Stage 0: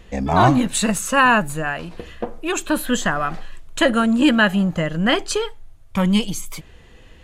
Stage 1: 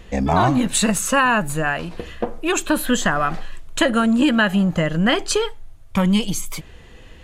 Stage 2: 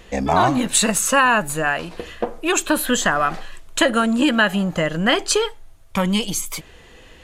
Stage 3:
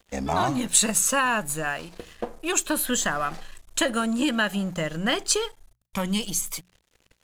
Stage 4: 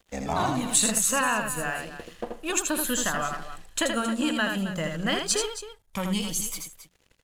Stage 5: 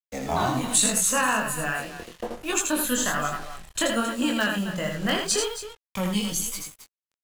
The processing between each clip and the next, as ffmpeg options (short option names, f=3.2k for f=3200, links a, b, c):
-af "acompressor=threshold=-16dB:ratio=6,volume=3dB"
-af "bass=f=250:g=-7,treble=f=4k:g=2,volume=1.5dB"
-af "bass=f=250:g=3,treble=f=4k:g=7,aeval=exprs='sgn(val(0))*max(abs(val(0))-0.0119,0)':c=same,bandreject=f=60:t=h:w=6,bandreject=f=120:t=h:w=6,bandreject=f=180:t=h:w=6,volume=-7.5dB"
-af "aecho=1:1:81|269:0.562|0.237,volume=-3dB"
-filter_complex "[0:a]acrossover=split=230|1700|3000[a][b][c][d];[c]aeval=exprs='(mod(17.8*val(0)+1,2)-1)/17.8':c=same[e];[a][b][e][d]amix=inputs=4:normalize=0,acrusher=bits=6:mix=0:aa=0.5,flanger=delay=20:depth=4.2:speed=1.2,volume=4.5dB"